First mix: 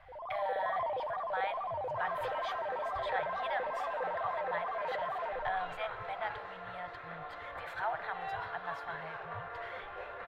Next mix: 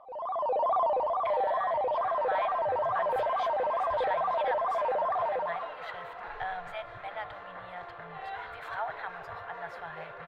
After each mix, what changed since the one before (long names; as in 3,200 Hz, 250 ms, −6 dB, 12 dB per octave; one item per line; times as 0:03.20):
speech: entry +0.95 s
first sound +8.0 dB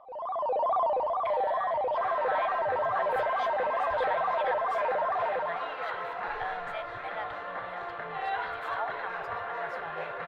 second sound +7.5 dB